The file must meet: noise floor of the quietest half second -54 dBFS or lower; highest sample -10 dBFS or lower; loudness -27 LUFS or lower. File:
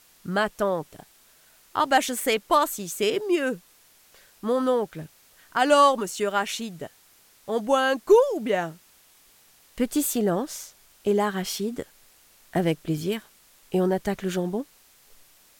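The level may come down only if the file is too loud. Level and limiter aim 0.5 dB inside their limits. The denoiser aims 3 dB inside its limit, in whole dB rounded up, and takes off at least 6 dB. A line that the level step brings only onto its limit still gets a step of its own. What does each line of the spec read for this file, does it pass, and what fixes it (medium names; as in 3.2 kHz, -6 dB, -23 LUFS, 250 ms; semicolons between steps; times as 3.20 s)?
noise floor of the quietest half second -57 dBFS: pass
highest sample -7.5 dBFS: fail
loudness -25.0 LUFS: fail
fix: trim -2.5 dB; peak limiter -10.5 dBFS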